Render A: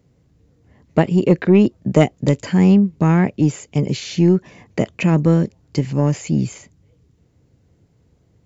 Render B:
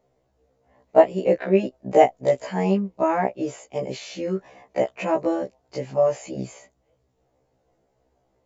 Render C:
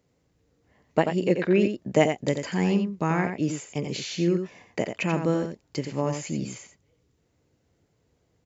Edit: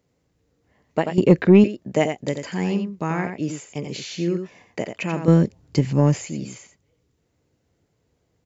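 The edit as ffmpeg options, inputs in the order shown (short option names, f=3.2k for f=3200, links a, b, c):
-filter_complex "[0:a]asplit=2[a][b];[2:a]asplit=3[c][d][e];[c]atrim=end=1.182[f];[a]atrim=start=1.178:end=1.642[g];[d]atrim=start=1.638:end=5.282[h];[b]atrim=start=5.278:end=6.252[i];[e]atrim=start=6.248[j];[f][g]acrossfade=d=0.004:c1=hsin:c2=hsin[k];[k][h]acrossfade=d=0.004:c1=hsin:c2=hsin[l];[l][i]acrossfade=d=0.004:c1=hsin:c2=hsin[m];[m][j]acrossfade=d=0.004:c1=hsin:c2=hsin"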